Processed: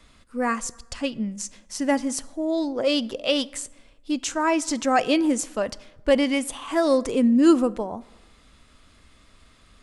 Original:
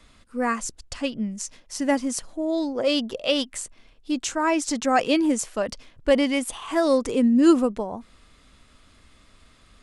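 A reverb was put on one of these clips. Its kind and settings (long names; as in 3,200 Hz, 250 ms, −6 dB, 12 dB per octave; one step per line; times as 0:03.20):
dense smooth reverb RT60 1.1 s, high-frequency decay 0.55×, DRR 18.5 dB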